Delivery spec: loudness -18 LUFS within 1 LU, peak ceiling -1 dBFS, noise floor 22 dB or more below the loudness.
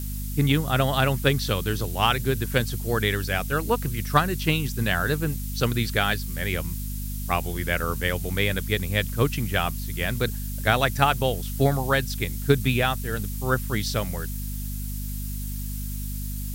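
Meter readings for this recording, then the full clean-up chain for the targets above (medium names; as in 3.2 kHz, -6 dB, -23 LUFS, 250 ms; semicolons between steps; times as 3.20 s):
hum 50 Hz; highest harmonic 250 Hz; hum level -29 dBFS; noise floor -31 dBFS; noise floor target -48 dBFS; loudness -25.5 LUFS; peak level -5.0 dBFS; loudness target -18.0 LUFS
-> de-hum 50 Hz, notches 5; noise print and reduce 17 dB; trim +7.5 dB; peak limiter -1 dBFS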